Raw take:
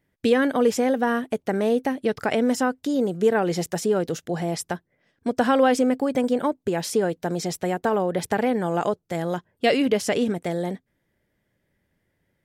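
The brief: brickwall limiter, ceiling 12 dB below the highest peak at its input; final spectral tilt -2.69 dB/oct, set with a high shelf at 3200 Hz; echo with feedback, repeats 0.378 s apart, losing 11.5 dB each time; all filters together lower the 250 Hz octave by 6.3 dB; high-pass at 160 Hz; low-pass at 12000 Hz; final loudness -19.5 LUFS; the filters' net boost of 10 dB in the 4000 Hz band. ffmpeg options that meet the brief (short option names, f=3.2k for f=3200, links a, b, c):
-af "highpass=160,lowpass=12k,equalizer=f=250:t=o:g=-6.5,highshelf=f=3.2k:g=7.5,equalizer=f=4k:t=o:g=8,alimiter=limit=-15dB:level=0:latency=1,aecho=1:1:378|756|1134:0.266|0.0718|0.0194,volume=6.5dB"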